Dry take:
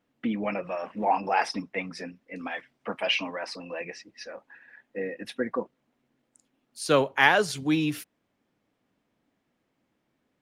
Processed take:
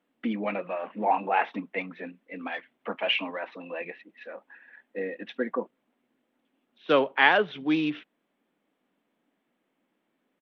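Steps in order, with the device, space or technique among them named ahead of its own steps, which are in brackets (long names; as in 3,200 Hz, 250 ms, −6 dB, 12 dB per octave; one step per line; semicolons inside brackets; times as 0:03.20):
Bluetooth headset (high-pass filter 190 Hz 24 dB per octave; downsampling to 8,000 Hz; SBC 64 kbit/s 32,000 Hz)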